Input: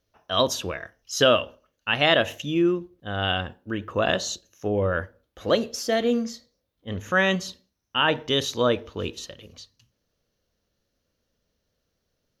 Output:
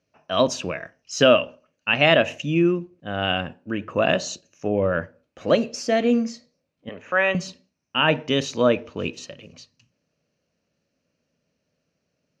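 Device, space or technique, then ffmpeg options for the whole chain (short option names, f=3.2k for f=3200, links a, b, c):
car door speaker: -filter_complex "[0:a]highpass=100,equalizer=f=160:t=q:w=4:g=9,equalizer=f=260:t=q:w=4:g=6,equalizer=f=610:t=q:w=4:g=5,equalizer=f=2.5k:t=q:w=4:g=9,equalizer=f=3.5k:t=q:w=4:g=-8,lowpass=f=7.9k:w=0.5412,lowpass=f=7.9k:w=1.3066,asettb=1/sr,asplit=3[a][b][c];[a]atrim=end=6.894[d];[b]atrim=start=6.89:end=7.35,asetpts=PTS-STARTPTS,afade=t=in:d=0.004:c=qsin,afade=t=out:st=0.456:d=0.004:c=qsin,acrossover=split=390 3200:gain=0.126 1 0.158[e][f][g];[e][f][g]amix=inputs=3:normalize=0[h];[c]atrim=start=7.346[i];[d][h]acrossfade=d=0.004:c1=hsin:c2=qsin[j];[j][i]acrossfade=d=0.004:c1=qsin:c2=hsin"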